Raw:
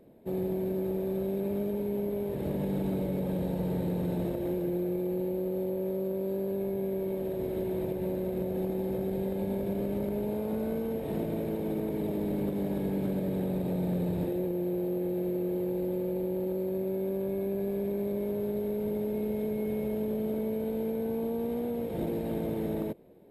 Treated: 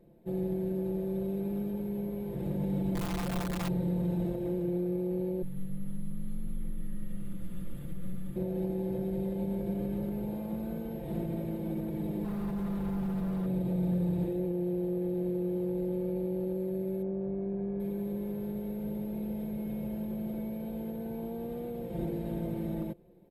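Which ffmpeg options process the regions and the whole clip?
ffmpeg -i in.wav -filter_complex "[0:a]asettb=1/sr,asplit=3[link_01][link_02][link_03];[link_01]atrim=end=2.954[link_04];[link_02]atrim=start=2.95:end=3.69,asetpts=PTS-STARTPTS,afade=type=in:duration=0.004:curve=qsin,afade=type=out:start_time=0.736:duration=0.004:curve=qsin,bandreject=frequency=1100:width=7.2,aeval=exprs='(mod(18.8*val(0)+1,2)-1)/18.8':channel_layout=same[link_05];[link_03]atrim=start=3.686[link_06];[link_04][link_05]acrossfade=duration=0.004:curve1=hsin:curve2=qsin[link_07];[link_07][link_06]acrossfade=duration=0.004:curve1=qsin:curve2=hsin,asettb=1/sr,asplit=3[link_08][link_09][link_10];[link_08]atrim=end=5.424[link_11];[link_09]atrim=start=5.42:end=8.36,asetpts=PTS-STARTPTS,afade=type=in:duration=0.004:curve=qsin,afade=type=out:start_time=2.936:duration=0.004:curve=qsin,highpass=frequency=450:width=0.5412,highpass=frequency=450:width=1.3066,afreqshift=-370[link_12];[link_10]atrim=start=8.356[link_13];[link_11][link_12]acrossfade=duration=0.004:curve1=hsin:curve2=qsin[link_14];[link_14][link_13]acrossfade=duration=0.004:curve1=qsin:curve2=hsin,asettb=1/sr,asplit=3[link_15][link_16][link_17];[link_15]atrim=end=12.244[link_18];[link_16]atrim=start=12.24:end=13.46,asetpts=PTS-STARTPTS,afade=type=in:duration=0.004:curve=qsin,afade=type=out:start_time=1.216:duration=0.004:curve=qsin,aecho=1:1:4.7:0.87,atrim=end_sample=53802,asoftclip=type=hard:threshold=-30.5dB[link_19];[link_17]atrim=start=13.456[link_20];[link_18][link_19]acrossfade=duration=0.004:curve1=hsin:curve2=qsin[link_21];[link_21][link_20]acrossfade=duration=0.004:curve1=qsin:curve2=hsin,asettb=1/sr,asplit=3[link_22][link_23][link_24];[link_22]atrim=end=17.024[link_25];[link_23]atrim=start=17.02:end=17.8,asetpts=PTS-STARTPTS,afade=type=in:duration=0.004:curve=qsin,afade=type=out:start_time=0.776:duration=0.004:curve=qsin,lowpass=1600,aeval=exprs='val(0)+0.00158*sin(2*PI*730*n/s)':channel_layout=same[link_26];[link_24]atrim=start=17.796[link_27];[link_25][link_26]acrossfade=duration=0.004:curve1=hsin:curve2=qsin[link_28];[link_28][link_27]acrossfade=duration=0.004:curve1=qsin:curve2=hsin,lowshelf=frequency=140:gain=12,aecho=1:1:5.8:0.82,volume=-8dB" out.wav

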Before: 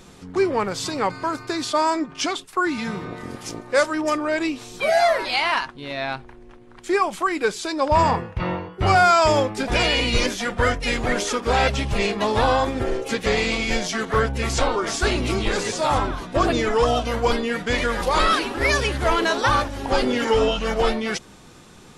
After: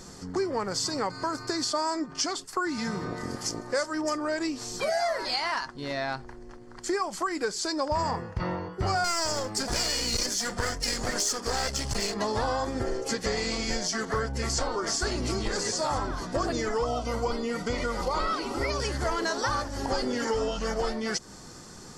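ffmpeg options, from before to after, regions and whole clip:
ffmpeg -i in.wav -filter_complex "[0:a]asettb=1/sr,asplit=3[link_01][link_02][link_03];[link_01]atrim=end=9.044[link_04];[link_02]atrim=start=9.04:end=12.14,asetpts=PTS-STARTPTS,afade=type=in:duration=0.004:curve=qsin,afade=type=out:start_time=3.096:duration=0.004:curve=qsin,aeval=exprs='clip(val(0),-1,0.0447)':channel_layout=same,highshelf=frequency=3800:gain=10[link_05];[link_03]atrim=start=12.136[link_06];[link_04][link_05]acrossfade=duration=0.004:curve1=hsin:curve2=qsin[link_07];[link_07][link_06]acrossfade=duration=0.004:curve1=qsin:curve2=hsin,asettb=1/sr,asplit=3[link_08][link_09][link_10];[link_08]atrim=end=16.784[link_11];[link_09]atrim=start=16.78:end=18.8,asetpts=PTS-STARTPTS,afade=type=in:duration=0.004:curve=qsin,afade=type=out:start_time=2.016:duration=0.004:curve=qsin,acrossover=split=3800[link_12][link_13];[link_13]acompressor=threshold=-45dB:ratio=4:attack=1:release=60[link_14];[link_12][link_14]amix=inputs=2:normalize=0,asuperstop=centerf=1700:order=4:qfactor=4.9,highshelf=frequency=7600:gain=4.5[link_15];[link_10]atrim=start=18.796[link_16];[link_11][link_15]acrossfade=duration=0.004:curve1=hsin:curve2=qsin[link_17];[link_17][link_16]acrossfade=duration=0.004:curve1=qsin:curve2=hsin,superequalizer=12b=0.447:13b=0.562:14b=2.24:15b=2,acompressor=threshold=-28dB:ratio=3" out.wav

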